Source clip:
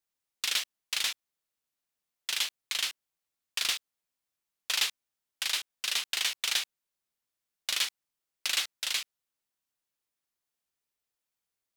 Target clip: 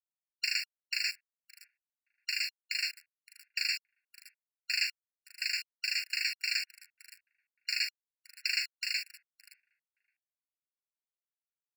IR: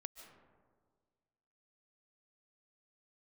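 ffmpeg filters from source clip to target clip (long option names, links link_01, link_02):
-filter_complex "[0:a]lowpass=4400,afwtdn=0.00708,highpass=frequency=1300:poles=1,asplit=2[link_01][link_02];[link_02]alimiter=level_in=1.5dB:limit=-24dB:level=0:latency=1:release=109,volume=-1.5dB,volume=-3dB[link_03];[link_01][link_03]amix=inputs=2:normalize=0,crystalizer=i=5:c=0,aecho=1:1:569|1138:0.075|0.0165,acrossover=split=2000[link_04][link_05];[link_05]acrusher=bits=5:mix=0:aa=0.000001[link_06];[link_04][link_06]amix=inputs=2:normalize=0,afftfilt=real='re*eq(mod(floor(b*sr/1024/1400),2),1)':imag='im*eq(mod(floor(b*sr/1024/1400),2),1)':win_size=1024:overlap=0.75,volume=-6.5dB"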